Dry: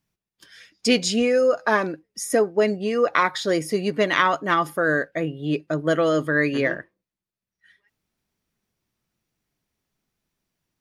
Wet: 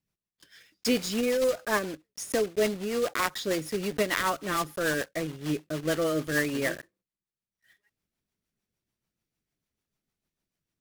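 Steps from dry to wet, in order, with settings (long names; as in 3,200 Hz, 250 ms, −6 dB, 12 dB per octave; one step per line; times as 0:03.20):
one scale factor per block 3 bits
rotating-speaker cabinet horn 6.7 Hz
level −5 dB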